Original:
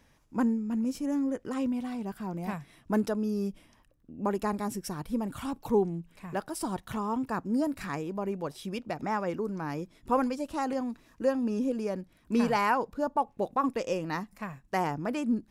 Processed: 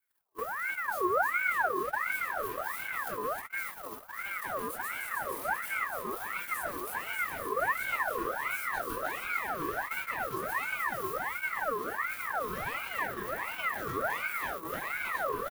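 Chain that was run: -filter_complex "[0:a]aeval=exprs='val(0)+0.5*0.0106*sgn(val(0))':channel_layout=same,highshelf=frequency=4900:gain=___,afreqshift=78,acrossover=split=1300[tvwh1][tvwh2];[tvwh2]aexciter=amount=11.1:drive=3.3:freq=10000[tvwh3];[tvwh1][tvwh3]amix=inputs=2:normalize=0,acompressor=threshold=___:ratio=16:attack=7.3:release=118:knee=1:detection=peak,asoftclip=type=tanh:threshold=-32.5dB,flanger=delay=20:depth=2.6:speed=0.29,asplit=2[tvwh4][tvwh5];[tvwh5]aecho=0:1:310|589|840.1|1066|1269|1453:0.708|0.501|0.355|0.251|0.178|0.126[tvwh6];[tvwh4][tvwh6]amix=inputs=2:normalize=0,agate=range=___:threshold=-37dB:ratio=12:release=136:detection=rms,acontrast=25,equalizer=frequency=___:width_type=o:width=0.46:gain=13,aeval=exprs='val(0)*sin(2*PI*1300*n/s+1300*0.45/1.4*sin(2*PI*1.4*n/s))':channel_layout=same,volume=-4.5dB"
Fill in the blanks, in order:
2.5, -29dB, -39dB, 380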